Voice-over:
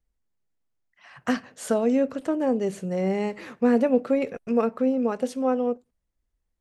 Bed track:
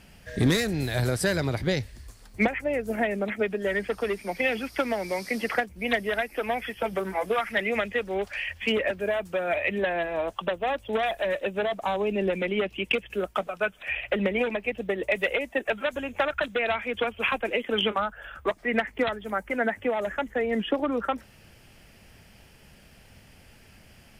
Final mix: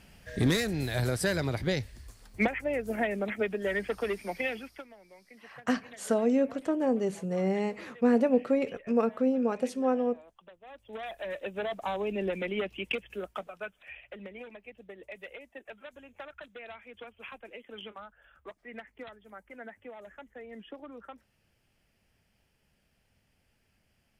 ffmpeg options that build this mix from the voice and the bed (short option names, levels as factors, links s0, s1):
-filter_complex "[0:a]adelay=4400,volume=0.668[s0];[1:a]volume=6.68,afade=t=out:st=4.25:d=0.62:silence=0.0794328,afade=t=in:st=10.63:d=1.14:silence=0.1,afade=t=out:st=12.65:d=1.42:silence=0.211349[s1];[s0][s1]amix=inputs=2:normalize=0"